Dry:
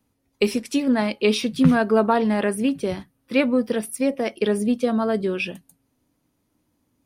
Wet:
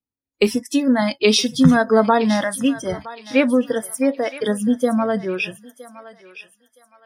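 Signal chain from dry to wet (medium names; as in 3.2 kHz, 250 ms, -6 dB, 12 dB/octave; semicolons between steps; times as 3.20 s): spectral noise reduction 27 dB; 1.02–2.92 s: peaking EQ 5.5 kHz +9 dB 1.2 oct; on a send: thinning echo 966 ms, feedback 38%, high-pass 1 kHz, level -13.5 dB; on the sum: trim +3.5 dB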